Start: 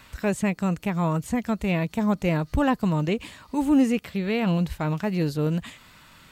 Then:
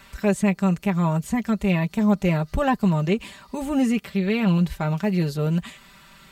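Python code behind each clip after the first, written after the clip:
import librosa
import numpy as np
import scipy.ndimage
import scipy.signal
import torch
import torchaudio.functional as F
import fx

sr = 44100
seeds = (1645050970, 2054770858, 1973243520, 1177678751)

y = x + 0.68 * np.pad(x, (int(5.1 * sr / 1000.0), 0))[:len(x)]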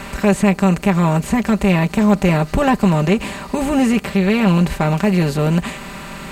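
y = fx.bin_compress(x, sr, power=0.6)
y = F.gain(torch.from_numpy(y), 4.0).numpy()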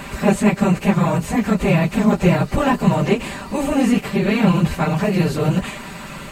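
y = fx.phase_scramble(x, sr, seeds[0], window_ms=50)
y = F.gain(torch.from_numpy(y), -1.5).numpy()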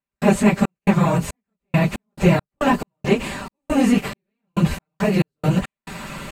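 y = fx.step_gate(x, sr, bpm=69, pattern='.xx.xx..x.x.x', floor_db=-60.0, edge_ms=4.5)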